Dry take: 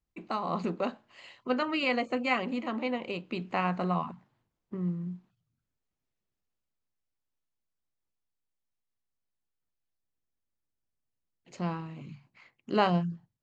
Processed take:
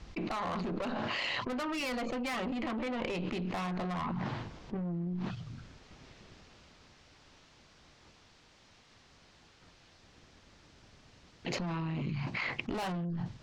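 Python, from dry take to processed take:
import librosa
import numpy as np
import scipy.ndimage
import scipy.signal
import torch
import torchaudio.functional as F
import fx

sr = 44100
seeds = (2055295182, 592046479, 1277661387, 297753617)

y = scipy.signal.sosfilt(scipy.signal.butter(4, 5600.0, 'lowpass', fs=sr, output='sos'), x)
y = fx.tube_stage(y, sr, drive_db=34.0, bias=0.65)
y = fx.env_flatten(y, sr, amount_pct=100)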